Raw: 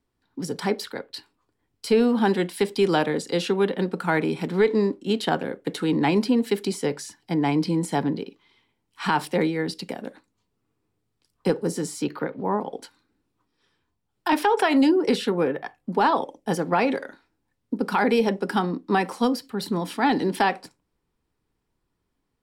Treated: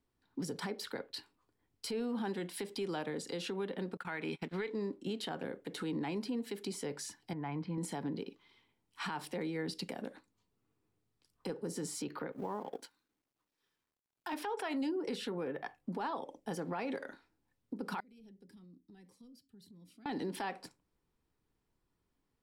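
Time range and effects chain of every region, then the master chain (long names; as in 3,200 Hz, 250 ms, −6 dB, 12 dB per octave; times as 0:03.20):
0:03.97–0:04.70: parametric band 2,300 Hz +9.5 dB 2.1 octaves + noise gate −28 dBFS, range −33 dB
0:07.33–0:07.78: low-pass filter 1,500 Hz + parametric band 350 Hz −13.5 dB 2.2 octaves
0:12.32–0:14.34: mu-law and A-law mismatch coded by A + low-shelf EQ 130 Hz −8 dB
0:18.00–0:20.06: guitar amp tone stack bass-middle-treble 10-0-1 + downward compressor 12 to 1, threshold −48 dBFS + phaser whose notches keep moving one way rising 1.6 Hz
whole clip: downward compressor 10 to 1, threshold −27 dBFS; brickwall limiter −24.5 dBFS; level −5 dB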